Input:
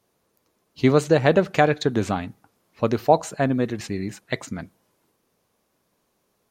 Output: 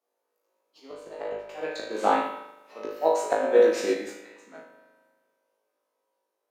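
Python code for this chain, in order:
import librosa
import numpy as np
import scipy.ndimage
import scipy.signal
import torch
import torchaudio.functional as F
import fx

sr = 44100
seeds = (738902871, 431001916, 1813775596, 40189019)

y = fx.doppler_pass(x, sr, speed_mps=12, closest_m=9.4, pass_at_s=2.89)
y = scipy.signal.sosfilt(scipy.signal.butter(4, 290.0, 'highpass', fs=sr, output='sos'), y)
y = fx.high_shelf(y, sr, hz=5200.0, db=3.5)
y = fx.auto_swell(y, sr, attack_ms=463.0)
y = fx.peak_eq(y, sr, hz=650.0, db=8.5, octaves=2.5)
y = fx.room_flutter(y, sr, wall_m=3.2, rt60_s=0.63)
y = fx.rev_spring(y, sr, rt60_s=1.5, pass_ms=(39,), chirp_ms=40, drr_db=0.5)
y = fx.upward_expand(y, sr, threshold_db=-43.0, expansion=1.5)
y = y * librosa.db_to_amplitude(3.5)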